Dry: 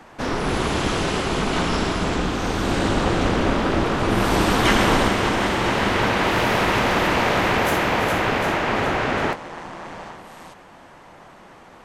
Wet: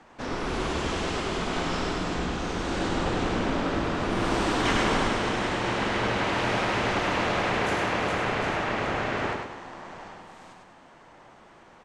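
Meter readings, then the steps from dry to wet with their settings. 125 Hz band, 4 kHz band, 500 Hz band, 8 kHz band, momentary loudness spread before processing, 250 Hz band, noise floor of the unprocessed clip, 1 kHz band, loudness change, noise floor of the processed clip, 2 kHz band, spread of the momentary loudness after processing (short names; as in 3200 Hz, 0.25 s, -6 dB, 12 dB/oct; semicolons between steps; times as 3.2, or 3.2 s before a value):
-7.5 dB, -6.5 dB, -6.5 dB, -7.0 dB, 8 LU, -6.5 dB, -46 dBFS, -6.5 dB, -6.5 dB, -52 dBFS, -6.5 dB, 8 LU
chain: LPF 8700 Hz 24 dB/oct; notches 50/100/150/200 Hz; on a send: feedback echo 0.101 s, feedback 39%, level -4 dB; on the sum: gain -8 dB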